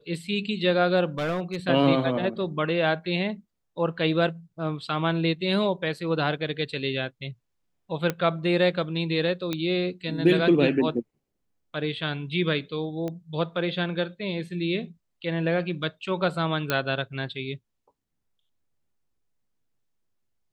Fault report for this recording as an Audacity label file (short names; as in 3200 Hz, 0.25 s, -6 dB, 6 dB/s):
1.180000	1.560000	clipped -23.5 dBFS
8.100000	8.100000	pop -12 dBFS
9.530000	9.530000	pop -14 dBFS
13.080000	13.080000	pop -20 dBFS
16.700000	16.700000	pop -9 dBFS